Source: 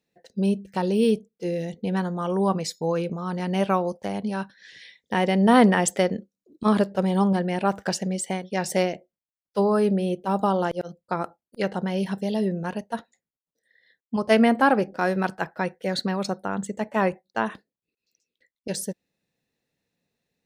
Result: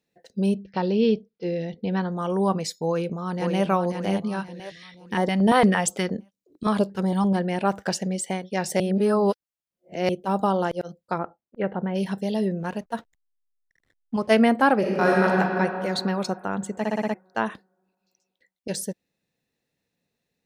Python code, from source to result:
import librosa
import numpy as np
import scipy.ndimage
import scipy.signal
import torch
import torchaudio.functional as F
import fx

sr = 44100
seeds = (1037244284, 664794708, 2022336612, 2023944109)

y = fx.steep_lowpass(x, sr, hz=5500.0, slope=72, at=(0.54, 2.12))
y = fx.echo_throw(y, sr, start_s=2.88, length_s=0.77, ms=530, feedback_pct=40, wet_db=-4.0)
y = fx.filter_held_notch(y, sr, hz=8.7, low_hz=220.0, high_hz=2600.0, at=(4.39, 7.31), fade=0.02)
y = fx.bessel_lowpass(y, sr, hz=1700.0, order=8, at=(11.17, 11.94), fade=0.02)
y = fx.backlash(y, sr, play_db=-51.5, at=(12.6, 14.27))
y = fx.reverb_throw(y, sr, start_s=14.78, length_s=0.5, rt60_s=2.8, drr_db=-4.5)
y = fx.edit(y, sr, fx.reverse_span(start_s=8.8, length_s=1.29),
    fx.stutter_over(start_s=16.78, slice_s=0.06, count=6), tone=tone)